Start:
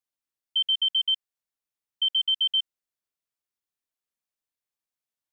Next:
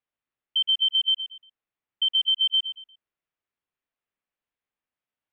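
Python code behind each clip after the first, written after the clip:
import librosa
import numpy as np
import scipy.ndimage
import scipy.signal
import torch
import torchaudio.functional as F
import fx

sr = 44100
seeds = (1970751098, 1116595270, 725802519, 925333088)

y = scipy.signal.sosfilt(scipy.signal.butter(4, 3000.0, 'lowpass', fs=sr, output='sos'), x)
y = fx.echo_feedback(y, sr, ms=117, feedback_pct=30, wet_db=-11.5)
y = F.gain(torch.from_numpy(y), 4.5).numpy()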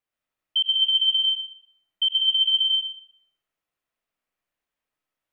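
y = fx.rev_freeverb(x, sr, rt60_s=0.73, hf_ratio=0.65, predelay_ms=70, drr_db=-1.0)
y = F.gain(torch.from_numpy(y), 1.5).numpy()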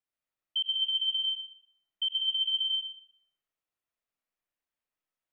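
y = fx.rider(x, sr, range_db=10, speed_s=0.5)
y = F.gain(torch.from_numpy(y), -7.0).numpy()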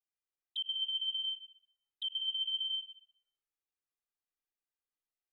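y = fx.env_flanger(x, sr, rest_ms=2.5, full_db=-27.5)
y = F.gain(torch.from_numpy(y), -6.0).numpy()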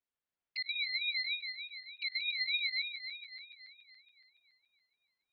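y = fx.reverse_delay_fb(x, sr, ms=141, feedback_pct=73, wet_db=-8.5)
y = scipy.signal.sosfilt(scipy.signal.butter(2, 2800.0, 'lowpass', fs=sr, output='sos'), y)
y = fx.ring_lfo(y, sr, carrier_hz=880.0, swing_pct=25, hz=3.3)
y = F.gain(torch.from_numpy(y), 6.0).numpy()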